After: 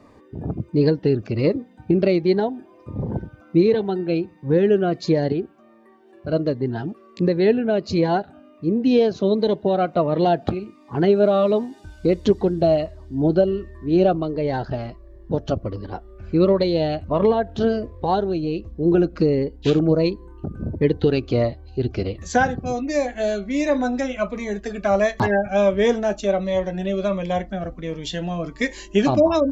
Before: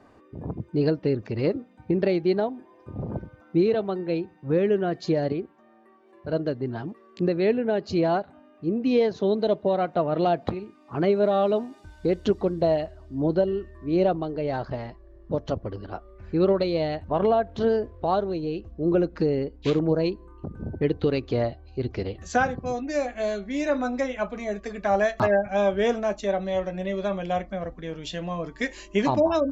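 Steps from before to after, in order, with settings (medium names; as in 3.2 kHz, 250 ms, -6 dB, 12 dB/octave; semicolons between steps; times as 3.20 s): Shepard-style phaser falling 1.4 Hz; trim +6 dB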